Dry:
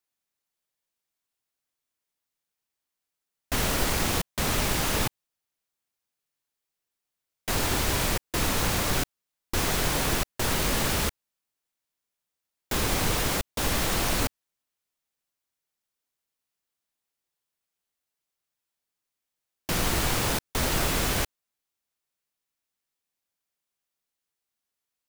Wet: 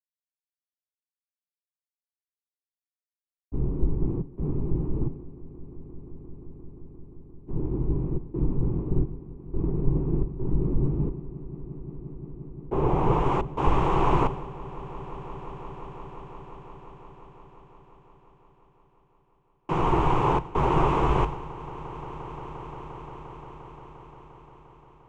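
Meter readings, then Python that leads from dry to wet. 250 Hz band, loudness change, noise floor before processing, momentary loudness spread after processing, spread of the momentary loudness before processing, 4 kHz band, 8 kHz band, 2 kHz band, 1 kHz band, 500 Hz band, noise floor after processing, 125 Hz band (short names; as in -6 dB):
+4.0 dB, -2.0 dB, under -85 dBFS, 22 LU, 6 LU, -17.5 dB, under -25 dB, -11.0 dB, +4.5 dB, +3.0 dB, under -85 dBFS, +5.0 dB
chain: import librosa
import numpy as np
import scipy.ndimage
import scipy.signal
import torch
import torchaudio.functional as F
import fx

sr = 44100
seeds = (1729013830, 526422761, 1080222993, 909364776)

p1 = fx.filter_sweep_lowpass(x, sr, from_hz=270.0, to_hz=960.0, start_s=11.21, end_s=13.37, q=1.5)
p2 = fx.ripple_eq(p1, sr, per_octave=0.7, db=11)
p3 = p2 + fx.echo_swell(p2, sr, ms=175, loudest=8, wet_db=-16, dry=0)
y = fx.band_widen(p3, sr, depth_pct=100)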